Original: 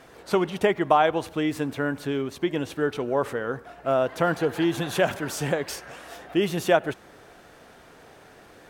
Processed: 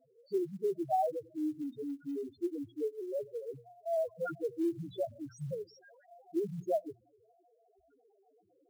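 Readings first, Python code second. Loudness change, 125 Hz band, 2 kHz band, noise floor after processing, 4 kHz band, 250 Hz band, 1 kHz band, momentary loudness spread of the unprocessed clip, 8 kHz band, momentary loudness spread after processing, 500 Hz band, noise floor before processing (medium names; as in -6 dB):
-11.5 dB, -14.0 dB, -27.0 dB, -71 dBFS, under -25 dB, -10.5 dB, -12.0 dB, 11 LU, under -20 dB, 10 LU, -10.5 dB, -51 dBFS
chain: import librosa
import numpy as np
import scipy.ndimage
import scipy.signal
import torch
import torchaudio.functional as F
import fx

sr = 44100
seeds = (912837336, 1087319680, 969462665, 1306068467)

y = fx.spec_topn(x, sr, count=1)
y = fx.hum_notches(y, sr, base_hz=60, count=4)
y = fx.quant_float(y, sr, bits=4)
y = F.gain(torch.from_numpy(y), -3.5).numpy()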